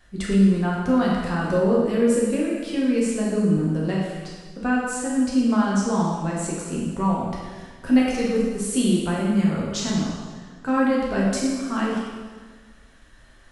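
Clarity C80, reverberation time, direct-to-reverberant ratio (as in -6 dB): 1.5 dB, 1.5 s, -5.0 dB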